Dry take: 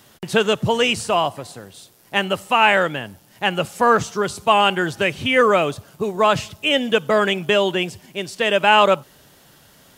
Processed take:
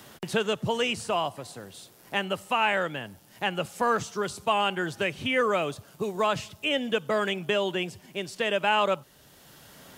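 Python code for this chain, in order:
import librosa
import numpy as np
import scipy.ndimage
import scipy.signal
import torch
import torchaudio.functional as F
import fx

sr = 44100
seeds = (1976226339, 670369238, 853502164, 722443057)

y = fx.band_squash(x, sr, depth_pct=40)
y = y * 10.0 ** (-9.0 / 20.0)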